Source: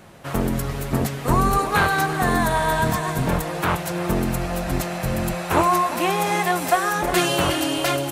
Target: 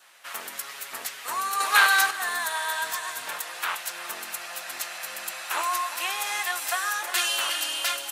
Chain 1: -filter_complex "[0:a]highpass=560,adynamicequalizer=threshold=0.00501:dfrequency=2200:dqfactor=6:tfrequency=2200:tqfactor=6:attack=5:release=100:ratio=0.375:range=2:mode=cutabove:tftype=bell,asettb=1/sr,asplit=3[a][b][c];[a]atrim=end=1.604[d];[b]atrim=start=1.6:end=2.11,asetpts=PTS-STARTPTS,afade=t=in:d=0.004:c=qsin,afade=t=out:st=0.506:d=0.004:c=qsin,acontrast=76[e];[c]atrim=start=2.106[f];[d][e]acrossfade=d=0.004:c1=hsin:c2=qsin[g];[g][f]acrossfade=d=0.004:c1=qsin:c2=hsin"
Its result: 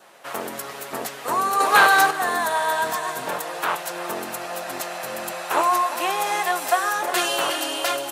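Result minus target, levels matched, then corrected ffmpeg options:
500 Hz band +10.5 dB
-filter_complex "[0:a]highpass=1.6k,adynamicequalizer=threshold=0.00501:dfrequency=2200:dqfactor=6:tfrequency=2200:tqfactor=6:attack=5:release=100:ratio=0.375:range=2:mode=cutabove:tftype=bell,asettb=1/sr,asplit=3[a][b][c];[a]atrim=end=1.604[d];[b]atrim=start=1.6:end=2.11,asetpts=PTS-STARTPTS,afade=t=in:d=0.004:c=qsin,afade=t=out:st=0.506:d=0.004:c=qsin,acontrast=76[e];[c]atrim=start=2.106[f];[d][e]acrossfade=d=0.004:c1=hsin:c2=qsin[g];[g][f]acrossfade=d=0.004:c1=qsin:c2=hsin"

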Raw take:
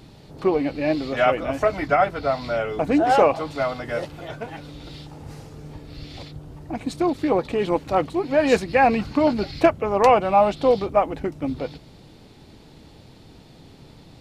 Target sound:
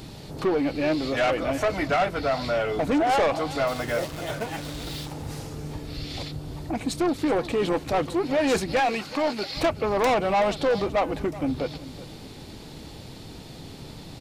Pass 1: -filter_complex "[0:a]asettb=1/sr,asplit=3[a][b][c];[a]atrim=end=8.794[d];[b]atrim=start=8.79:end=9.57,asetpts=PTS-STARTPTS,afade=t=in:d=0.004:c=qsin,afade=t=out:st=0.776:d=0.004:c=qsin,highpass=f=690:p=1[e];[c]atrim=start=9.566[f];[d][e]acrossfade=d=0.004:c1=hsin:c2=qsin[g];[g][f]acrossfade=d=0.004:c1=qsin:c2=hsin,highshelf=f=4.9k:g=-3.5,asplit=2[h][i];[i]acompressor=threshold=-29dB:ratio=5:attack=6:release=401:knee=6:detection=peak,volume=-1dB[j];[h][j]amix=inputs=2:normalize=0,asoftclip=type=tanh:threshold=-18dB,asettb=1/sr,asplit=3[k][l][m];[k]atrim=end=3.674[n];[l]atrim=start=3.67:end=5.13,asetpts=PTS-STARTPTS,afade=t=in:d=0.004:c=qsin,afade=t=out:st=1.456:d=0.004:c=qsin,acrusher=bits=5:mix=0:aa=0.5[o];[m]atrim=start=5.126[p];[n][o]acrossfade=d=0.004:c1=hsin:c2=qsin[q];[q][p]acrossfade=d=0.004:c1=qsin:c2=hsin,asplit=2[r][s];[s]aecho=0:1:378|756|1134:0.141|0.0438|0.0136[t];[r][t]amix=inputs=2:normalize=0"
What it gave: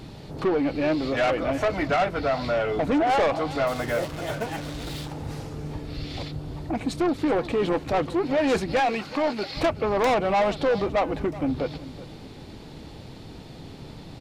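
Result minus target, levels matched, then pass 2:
compressor: peak gain reduction -5.5 dB; 8000 Hz band -4.5 dB
-filter_complex "[0:a]asettb=1/sr,asplit=3[a][b][c];[a]atrim=end=8.794[d];[b]atrim=start=8.79:end=9.57,asetpts=PTS-STARTPTS,afade=t=in:d=0.004:c=qsin,afade=t=out:st=0.776:d=0.004:c=qsin,highpass=f=690:p=1[e];[c]atrim=start=9.566[f];[d][e]acrossfade=d=0.004:c1=hsin:c2=qsin[g];[g][f]acrossfade=d=0.004:c1=qsin:c2=hsin,highshelf=f=4.9k:g=7,asplit=2[h][i];[i]acompressor=threshold=-36dB:ratio=5:attack=6:release=401:knee=6:detection=peak,volume=-1dB[j];[h][j]amix=inputs=2:normalize=0,asoftclip=type=tanh:threshold=-18dB,asettb=1/sr,asplit=3[k][l][m];[k]atrim=end=3.674[n];[l]atrim=start=3.67:end=5.13,asetpts=PTS-STARTPTS,afade=t=in:d=0.004:c=qsin,afade=t=out:st=1.456:d=0.004:c=qsin,acrusher=bits=5:mix=0:aa=0.5[o];[m]atrim=start=5.126[p];[n][o]acrossfade=d=0.004:c1=hsin:c2=qsin[q];[q][p]acrossfade=d=0.004:c1=qsin:c2=hsin,asplit=2[r][s];[s]aecho=0:1:378|756|1134:0.141|0.0438|0.0136[t];[r][t]amix=inputs=2:normalize=0"

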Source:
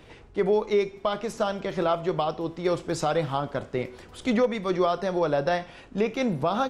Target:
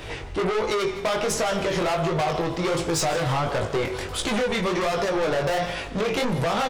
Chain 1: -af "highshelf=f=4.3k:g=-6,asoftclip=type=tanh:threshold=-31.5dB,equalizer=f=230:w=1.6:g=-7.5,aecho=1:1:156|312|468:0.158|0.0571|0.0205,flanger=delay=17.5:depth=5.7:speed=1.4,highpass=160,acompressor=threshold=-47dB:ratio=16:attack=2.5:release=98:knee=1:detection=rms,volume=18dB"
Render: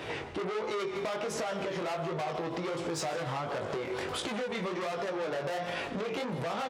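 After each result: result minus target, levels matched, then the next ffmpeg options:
compressor: peak gain reduction +11 dB; 8000 Hz band -3.0 dB; 125 Hz band -2.5 dB
-af "highshelf=f=4.3k:g=-6,asoftclip=type=tanh:threshold=-31.5dB,equalizer=f=230:w=1.6:g=-7.5,aecho=1:1:156|312|468:0.158|0.0571|0.0205,flanger=delay=17.5:depth=5.7:speed=1.4,highpass=160,acompressor=threshold=-37dB:ratio=16:attack=2.5:release=98:knee=1:detection=rms,volume=18dB"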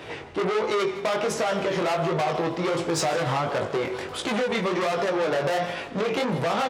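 8000 Hz band -3.5 dB; 125 Hz band -2.5 dB
-af "highshelf=f=4.3k:g=3.5,asoftclip=type=tanh:threshold=-31.5dB,equalizer=f=230:w=1.6:g=-7.5,aecho=1:1:156|312|468:0.158|0.0571|0.0205,flanger=delay=17.5:depth=5.7:speed=1.4,highpass=160,acompressor=threshold=-37dB:ratio=16:attack=2.5:release=98:knee=1:detection=rms,volume=18dB"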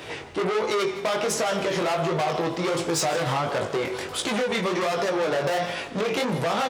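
125 Hz band -3.0 dB
-af "highshelf=f=4.3k:g=3.5,asoftclip=type=tanh:threshold=-31.5dB,equalizer=f=230:w=1.6:g=-7.5,aecho=1:1:156|312|468:0.158|0.0571|0.0205,flanger=delay=17.5:depth=5.7:speed=1.4,acompressor=threshold=-37dB:ratio=16:attack=2.5:release=98:knee=1:detection=rms,volume=18dB"

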